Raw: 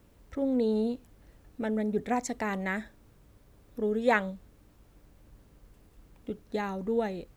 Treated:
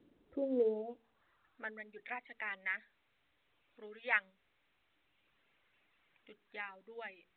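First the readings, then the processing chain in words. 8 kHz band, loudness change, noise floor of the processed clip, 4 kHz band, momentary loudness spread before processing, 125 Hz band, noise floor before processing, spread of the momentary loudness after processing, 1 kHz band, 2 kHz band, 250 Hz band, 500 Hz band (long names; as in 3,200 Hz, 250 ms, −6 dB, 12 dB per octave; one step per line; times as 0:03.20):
below −30 dB, −8.5 dB, −77 dBFS, −9.0 dB, 15 LU, below −25 dB, −60 dBFS, 16 LU, −13.5 dB, −3.0 dB, −15.5 dB, −9.0 dB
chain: hum removal 45.4 Hz, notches 10
reverb reduction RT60 1.4 s
band-pass filter sweep 310 Hz → 2,300 Hz, 0:00.20–0:01.90
level +1 dB
mu-law 64 kbit/s 8,000 Hz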